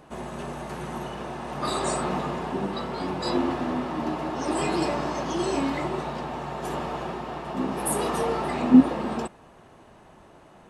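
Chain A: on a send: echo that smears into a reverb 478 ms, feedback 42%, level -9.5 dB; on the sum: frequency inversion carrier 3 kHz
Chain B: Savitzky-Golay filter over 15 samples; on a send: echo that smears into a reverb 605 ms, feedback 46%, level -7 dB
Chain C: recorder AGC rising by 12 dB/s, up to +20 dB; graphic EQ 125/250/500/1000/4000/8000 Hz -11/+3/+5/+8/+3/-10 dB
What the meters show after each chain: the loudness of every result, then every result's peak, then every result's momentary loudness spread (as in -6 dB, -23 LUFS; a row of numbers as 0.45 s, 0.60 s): -23.5 LUFS, -26.5 LUFS, -16.5 LUFS; -4.0 dBFS, -4.0 dBFS, -2.0 dBFS; 10 LU, 10 LU, 12 LU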